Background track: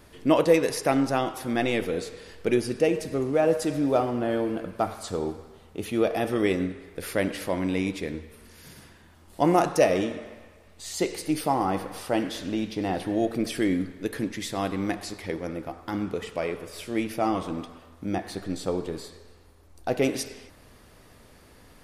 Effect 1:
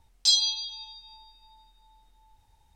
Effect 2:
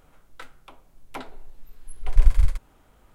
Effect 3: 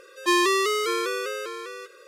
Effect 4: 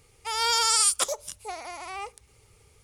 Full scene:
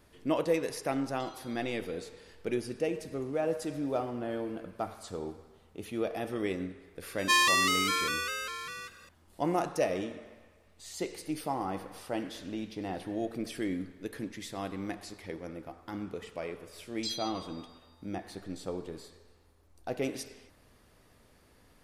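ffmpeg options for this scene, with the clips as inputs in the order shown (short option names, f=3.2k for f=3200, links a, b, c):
-filter_complex "[1:a]asplit=2[a][b];[0:a]volume=-9dB[c];[a]acompressor=threshold=-37dB:ratio=6:attack=3.2:release=140:knee=1:detection=peak[d];[3:a]highpass=1.1k[e];[d]atrim=end=2.75,asetpts=PTS-STARTPTS,volume=-18dB,afade=t=in:d=0.004:c=hsin,afade=t=out:st=2.746:d=0.004:c=hsin,adelay=950[f];[e]atrim=end=2.07,asetpts=PTS-STARTPTS,afade=t=in:d=0.004:c=hsin,afade=t=out:st=2.066:d=0.004:c=hsin,adelay=7020[g];[b]atrim=end=2.75,asetpts=PTS-STARTPTS,volume=-16dB,afade=t=in:d=0.004:c=hsin,afade=t=out:st=2.746:d=0.004:c=hsin,adelay=16780[h];[c][f][g][h]amix=inputs=4:normalize=0"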